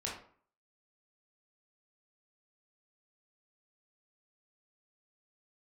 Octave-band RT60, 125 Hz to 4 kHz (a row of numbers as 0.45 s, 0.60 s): 0.50 s, 0.55 s, 0.50 s, 0.50 s, 0.40 s, 0.30 s